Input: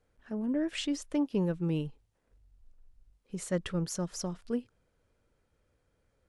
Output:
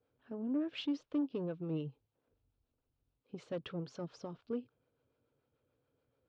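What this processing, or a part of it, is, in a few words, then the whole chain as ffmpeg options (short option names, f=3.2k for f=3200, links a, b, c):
guitar amplifier with harmonic tremolo: -filter_complex "[0:a]acrossover=split=540[a][b];[a]aeval=exprs='val(0)*(1-0.5/2+0.5/2*cos(2*PI*6.9*n/s))':c=same[c];[b]aeval=exprs='val(0)*(1-0.5/2-0.5/2*cos(2*PI*6.9*n/s))':c=same[d];[c][d]amix=inputs=2:normalize=0,asoftclip=type=tanh:threshold=-28dB,highpass=110,equalizer=f=130:t=q:w=4:g=7,equalizer=f=190:t=q:w=4:g=-7,equalizer=f=270:t=q:w=4:g=6,equalizer=f=460:t=q:w=4:g=4,equalizer=f=1.9k:t=q:w=4:g=-9,lowpass=f=4.1k:w=0.5412,lowpass=f=4.1k:w=1.3066,volume=-3dB"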